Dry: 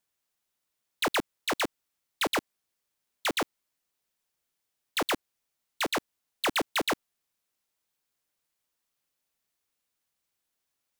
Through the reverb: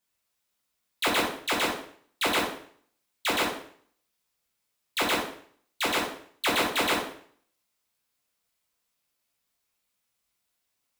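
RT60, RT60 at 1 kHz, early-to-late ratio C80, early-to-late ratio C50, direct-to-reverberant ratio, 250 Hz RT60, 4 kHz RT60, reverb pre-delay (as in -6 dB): 0.55 s, 0.55 s, 8.5 dB, 5.0 dB, -4.5 dB, 0.55 s, 0.50 s, 5 ms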